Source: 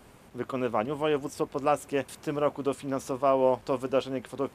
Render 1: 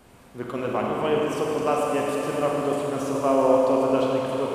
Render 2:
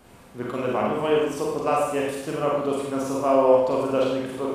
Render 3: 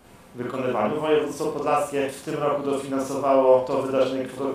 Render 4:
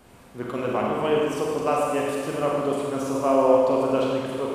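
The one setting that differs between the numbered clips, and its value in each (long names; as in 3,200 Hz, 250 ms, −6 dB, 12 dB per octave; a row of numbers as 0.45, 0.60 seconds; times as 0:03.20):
four-comb reverb, RT60: 4.5, 0.87, 0.37, 2.1 seconds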